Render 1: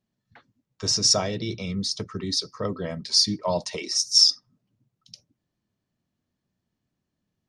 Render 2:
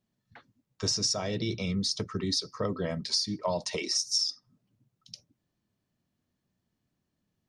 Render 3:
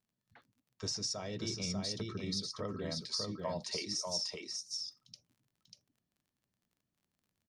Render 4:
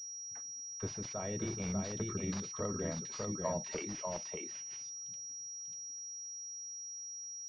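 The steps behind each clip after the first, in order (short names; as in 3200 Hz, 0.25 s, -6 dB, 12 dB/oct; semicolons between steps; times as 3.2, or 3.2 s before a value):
compressor 16:1, threshold -25 dBFS, peak gain reduction 14 dB
echo 0.592 s -3.5 dB; crackle 39/s -51 dBFS; gain -9 dB
pulse-width modulation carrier 5700 Hz; gain +2 dB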